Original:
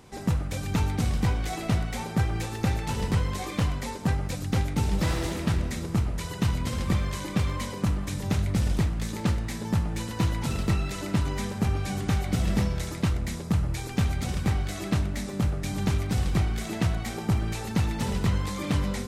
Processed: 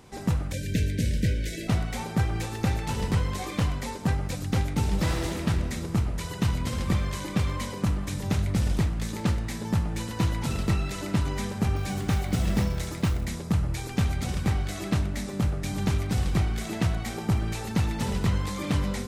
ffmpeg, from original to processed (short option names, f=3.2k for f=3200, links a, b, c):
-filter_complex "[0:a]asplit=3[a][b][c];[a]afade=t=out:st=0.52:d=0.02[d];[b]asuperstop=centerf=980:order=20:qfactor=1.1,afade=t=in:st=0.52:d=0.02,afade=t=out:st=1.67:d=0.02[e];[c]afade=t=in:st=1.67:d=0.02[f];[d][e][f]amix=inputs=3:normalize=0,asettb=1/sr,asplit=3[g][h][i];[g]atrim=end=11.764[j];[h]atrim=start=11.76:end=13.25,asetpts=PTS-STARTPTS,afade=t=in:d=0.004:c=qsin,afade=t=out:st=1.486:d=0.004:c=qsin,acrusher=bits=7:mode=log:mix=0:aa=0.000001[k];[i]atrim=start=13.246[l];[j][k]acrossfade=d=0.004:c1=hsin:c2=qsin[m];[m][l]acrossfade=d=0.004:c1=qsin:c2=hsin"